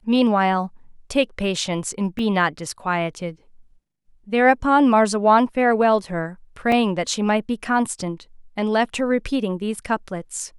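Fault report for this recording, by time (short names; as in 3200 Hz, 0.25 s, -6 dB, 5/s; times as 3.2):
2.19 gap 2.6 ms
6.72 gap 2.5 ms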